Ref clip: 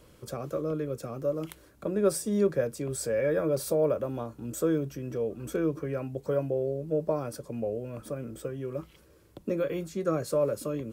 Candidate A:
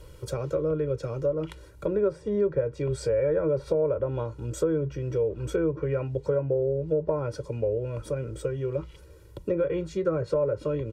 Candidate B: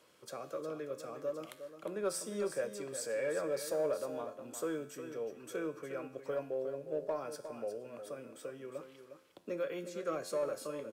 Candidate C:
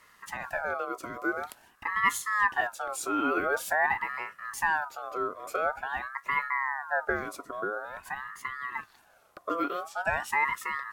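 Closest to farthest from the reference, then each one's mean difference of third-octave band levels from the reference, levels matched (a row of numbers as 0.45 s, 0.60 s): A, B, C; 4.5 dB, 6.5 dB, 11.5 dB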